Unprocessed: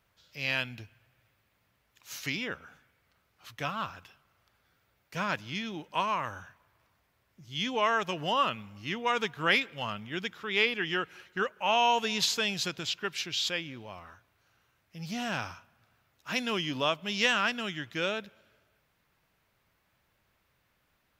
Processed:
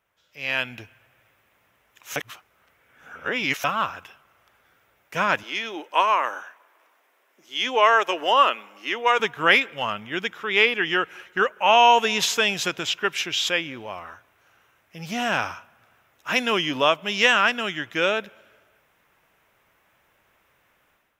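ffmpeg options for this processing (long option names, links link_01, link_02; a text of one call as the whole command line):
ffmpeg -i in.wav -filter_complex "[0:a]asettb=1/sr,asplit=3[link_01][link_02][link_03];[link_01]atrim=end=5.434[link_04];[link_02]atrim=start=5.43:end=9.2,asetpts=PTS-STARTPTS,afade=type=in:duration=0.004:curve=qsin,afade=type=out:start_time=3.766:duration=0.004:curve=qsin,highpass=frequency=300:width=0.5412,highpass=frequency=300:width=1.3066[link_05];[link_03]atrim=start=9.196[link_06];[link_04][link_05]acrossfade=duration=0.004:curve1=hsin:curve2=qsin[link_07];[link_07][link_06]acrossfade=duration=0.004:curve1=qsin:curve2=hsin,asplit=3[link_08][link_09][link_10];[link_08]atrim=end=2.162[link_11];[link_09]atrim=start=2.158:end=3.642,asetpts=PTS-STARTPTS,areverse[link_12];[link_10]atrim=start=3.638[link_13];[link_11][link_12]acrossfade=duration=0.004:curve1=hsin:curve2=hsin[link_14];[link_14][link_13]acrossfade=duration=0.004:curve1=hsin:curve2=hsin,equalizer=frequency=4400:width_type=o:width=0.41:gain=-10,dynaudnorm=framelen=380:gausssize=3:maxgain=11dB,bass=frequency=250:gain=-10,treble=frequency=4000:gain=-3" out.wav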